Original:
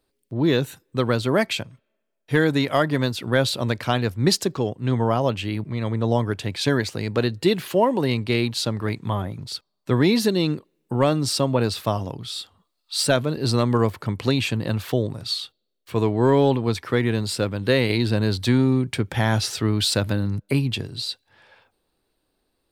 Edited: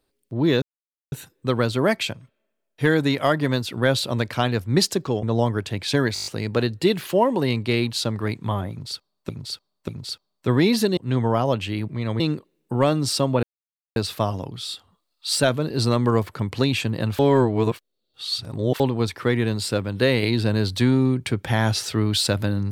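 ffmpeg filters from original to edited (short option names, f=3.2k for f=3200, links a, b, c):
-filter_complex "[0:a]asplit=16[a][b][c][d][e][f][g][h][i][j][k][l][m][n][o][p];[a]atrim=end=0.62,asetpts=PTS-STARTPTS,afade=t=out:st=0.616:d=0.004:c=hsin,apad=pad_dur=0.5[q];[b]atrim=start=0.62:end=4.732,asetpts=PTS-STARTPTS,afade=t=in:d=0.004:c=hsin[r];[c]atrim=start=5.958:end=6.892[s];[d]atrim=start=6.868:end=6.892[t];[e]atrim=start=6.868:end=6.892[u];[f]atrim=start=6.868:end=6.892[v];[g]atrim=start=6.868:end=6.892[w];[h]atrim=start=6.868:end=6.892[x];[i]atrim=start=6.868:end=9.902[y];[j]atrim=start=9.308:end=9.902[z];[k]atrim=start=9.308:end=10.402[aa];[l]atrim=start=4.728:end=5.962[ab];[m]atrim=start=10.398:end=11.63,asetpts=PTS-STARTPTS,afade=t=out:st=1.228:d=0.004:c=hsin,apad=pad_dur=0.53[ac];[n]atrim=start=11.63:end=14.862,asetpts=PTS-STARTPTS,afade=t=in:d=0.004:c=hsin[ad];[o]atrim=start=14.858:end=16.472,asetpts=PTS-STARTPTS,areverse[ae];[p]atrim=start=16.468[af];[q][r]concat=n=2:v=0:a=1[ag];[ag][s]acrossfade=d=0.004:c1=hsin:c2=hsin[ah];[ah][t]acrossfade=d=0.004:c1=hsin:c2=hsin[ai];[ai][u]acrossfade=d=0.004:c1=hsin:c2=hsin[aj];[aj][v]acrossfade=d=0.004:c1=hsin:c2=hsin[ak];[ak][w]acrossfade=d=0.004:c1=hsin:c2=hsin[al];[al][x]acrossfade=d=0.004:c1=hsin:c2=hsin[am];[am][y]acrossfade=d=0.004:c1=hsin:c2=hsin[an];[an][z]acrossfade=d=0.004:c1=hsin:c2=hsin[ao];[ao][aa]acrossfade=d=0.004:c1=hsin:c2=hsin[ap];[ap][ab]acrossfade=d=0.004:c1=hsin:c2=hsin[aq];[ac][ad]concat=n=2:v=0:a=1[ar];[aq][ar]acrossfade=d=0.004:c1=hsin:c2=hsin[as];[as][ae]acrossfade=d=0.004:c1=hsin:c2=hsin[at];[at][af]acrossfade=d=0.004:c1=hsin:c2=hsin"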